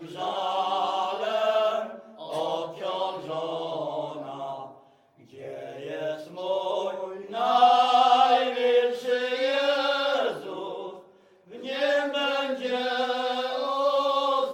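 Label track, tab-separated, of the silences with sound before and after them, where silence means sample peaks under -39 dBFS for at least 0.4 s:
4.720000	5.350000	silence
11.000000	11.520000	silence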